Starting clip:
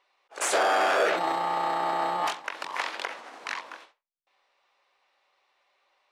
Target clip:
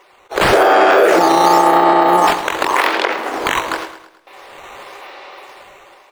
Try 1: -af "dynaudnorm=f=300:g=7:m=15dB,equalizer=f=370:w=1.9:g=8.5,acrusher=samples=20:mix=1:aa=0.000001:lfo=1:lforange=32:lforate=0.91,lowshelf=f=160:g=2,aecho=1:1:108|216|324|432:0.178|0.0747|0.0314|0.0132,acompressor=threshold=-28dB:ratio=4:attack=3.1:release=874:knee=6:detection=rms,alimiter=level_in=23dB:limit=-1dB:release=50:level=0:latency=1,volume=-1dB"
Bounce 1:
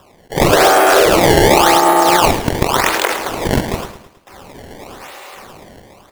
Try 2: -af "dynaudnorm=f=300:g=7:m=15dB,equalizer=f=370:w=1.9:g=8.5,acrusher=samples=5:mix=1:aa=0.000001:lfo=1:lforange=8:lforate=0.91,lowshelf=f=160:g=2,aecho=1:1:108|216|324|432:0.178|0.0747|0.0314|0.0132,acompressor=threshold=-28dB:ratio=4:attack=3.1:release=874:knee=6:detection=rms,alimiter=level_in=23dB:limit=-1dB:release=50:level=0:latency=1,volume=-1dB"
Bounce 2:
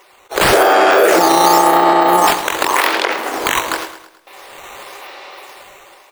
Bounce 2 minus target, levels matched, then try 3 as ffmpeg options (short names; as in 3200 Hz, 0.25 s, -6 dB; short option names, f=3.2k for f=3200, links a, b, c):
4000 Hz band +2.5 dB
-af "dynaudnorm=f=300:g=7:m=15dB,equalizer=f=370:w=1.9:g=8.5,acrusher=samples=5:mix=1:aa=0.000001:lfo=1:lforange=8:lforate=0.91,lowshelf=f=160:g=2,aecho=1:1:108|216|324|432:0.178|0.0747|0.0314|0.0132,acompressor=threshold=-28dB:ratio=4:attack=3.1:release=874:knee=6:detection=rms,lowpass=f=3.3k:p=1,alimiter=level_in=23dB:limit=-1dB:release=50:level=0:latency=1,volume=-1dB"